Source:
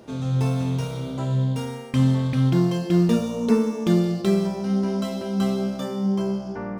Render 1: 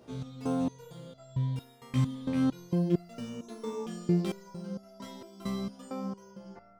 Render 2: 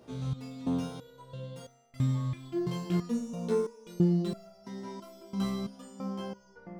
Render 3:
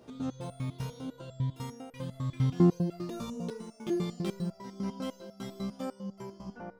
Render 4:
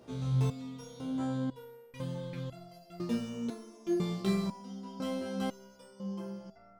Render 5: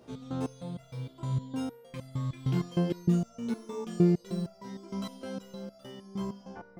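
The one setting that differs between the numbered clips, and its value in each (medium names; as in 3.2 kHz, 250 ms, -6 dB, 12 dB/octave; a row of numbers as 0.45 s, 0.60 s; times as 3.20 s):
resonator arpeggio, rate: 4.4 Hz, 3 Hz, 10 Hz, 2 Hz, 6.5 Hz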